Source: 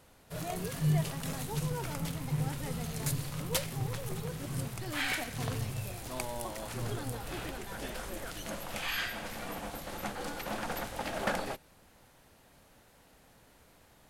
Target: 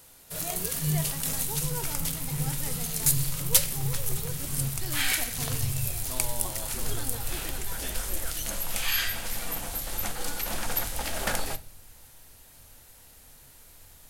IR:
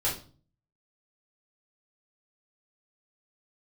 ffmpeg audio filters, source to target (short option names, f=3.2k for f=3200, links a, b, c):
-filter_complex "[0:a]crystalizer=i=4:c=0,asplit=2[a][b];[b]asubboost=boost=8:cutoff=120[c];[1:a]atrim=start_sample=2205[d];[c][d]afir=irnorm=-1:irlink=0,volume=-18.5dB[e];[a][e]amix=inputs=2:normalize=0,volume=-1.5dB"